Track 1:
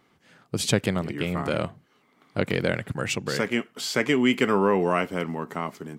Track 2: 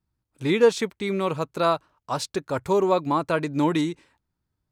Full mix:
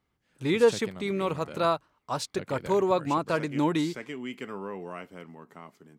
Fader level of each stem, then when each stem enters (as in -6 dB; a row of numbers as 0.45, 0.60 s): -16.0, -3.5 dB; 0.00, 0.00 s